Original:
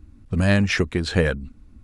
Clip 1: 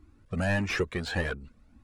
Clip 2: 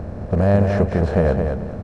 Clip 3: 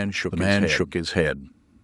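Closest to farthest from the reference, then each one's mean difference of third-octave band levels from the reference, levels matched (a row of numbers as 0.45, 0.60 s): 1, 3, 2; 3.5, 5.5, 10.0 dB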